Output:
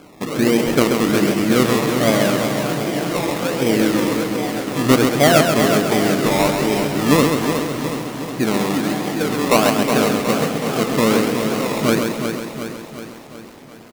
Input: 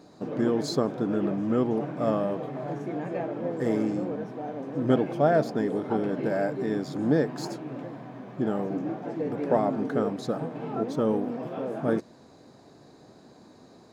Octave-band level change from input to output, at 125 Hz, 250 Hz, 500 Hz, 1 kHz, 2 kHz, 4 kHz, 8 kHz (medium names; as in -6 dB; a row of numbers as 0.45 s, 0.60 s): +10.5 dB, +10.0 dB, +9.0 dB, +12.0 dB, +18.0 dB, +21.0 dB, no reading